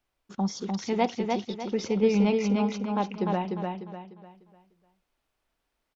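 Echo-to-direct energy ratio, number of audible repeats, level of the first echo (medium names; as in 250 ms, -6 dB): -3.0 dB, 4, -3.5 dB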